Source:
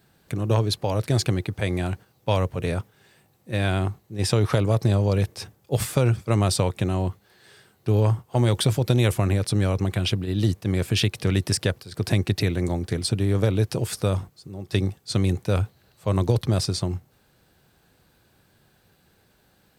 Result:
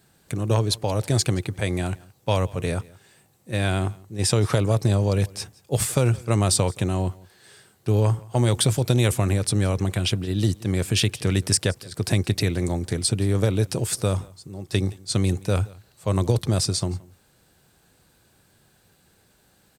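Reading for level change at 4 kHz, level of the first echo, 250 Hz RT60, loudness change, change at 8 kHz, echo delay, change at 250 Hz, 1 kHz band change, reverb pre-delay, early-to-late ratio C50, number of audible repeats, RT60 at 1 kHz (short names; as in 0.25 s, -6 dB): +2.0 dB, -23.5 dB, none, +0.5 dB, +6.5 dB, 0.172 s, 0.0 dB, 0.0 dB, none, none, 1, none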